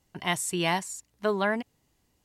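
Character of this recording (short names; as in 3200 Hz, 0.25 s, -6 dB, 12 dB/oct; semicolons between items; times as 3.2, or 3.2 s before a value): noise floor -72 dBFS; spectral tilt -3.5 dB/oct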